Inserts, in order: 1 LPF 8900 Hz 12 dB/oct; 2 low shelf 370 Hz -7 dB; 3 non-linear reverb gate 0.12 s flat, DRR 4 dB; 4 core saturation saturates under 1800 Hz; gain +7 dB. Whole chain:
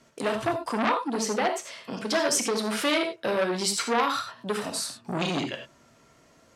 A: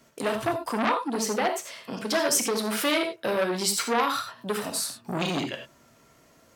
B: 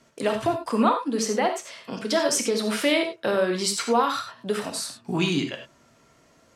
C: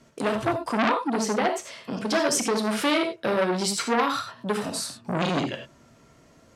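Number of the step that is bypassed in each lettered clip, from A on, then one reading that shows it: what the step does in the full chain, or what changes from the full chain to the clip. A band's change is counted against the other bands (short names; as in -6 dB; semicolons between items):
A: 1, 8 kHz band +2.0 dB; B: 4, crest factor change -2.0 dB; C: 2, 125 Hz band +2.5 dB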